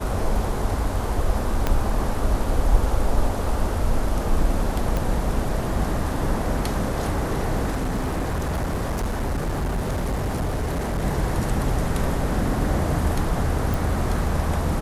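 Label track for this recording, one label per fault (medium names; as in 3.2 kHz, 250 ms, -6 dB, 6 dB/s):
1.670000	1.670000	pop -8 dBFS
4.970000	4.970000	pop
7.700000	11.050000	clipped -21 dBFS
13.740000	13.740000	pop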